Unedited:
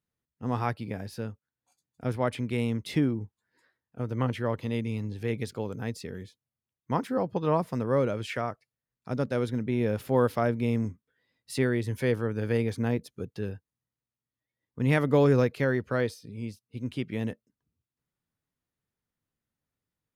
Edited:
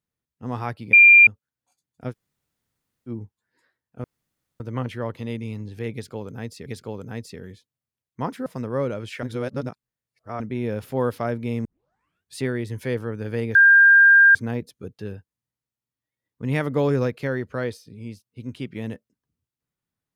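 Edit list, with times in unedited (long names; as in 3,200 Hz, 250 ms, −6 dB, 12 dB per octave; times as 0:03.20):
0:00.93–0:01.27: beep over 2,390 Hz −7 dBFS
0:02.11–0:03.09: fill with room tone, crossfade 0.06 s
0:04.04: splice in room tone 0.56 s
0:05.37–0:06.10: repeat, 2 plays
0:07.17–0:07.63: remove
0:08.40–0:09.57: reverse
0:10.82: tape start 0.74 s
0:12.72: insert tone 1,600 Hz −9 dBFS 0.80 s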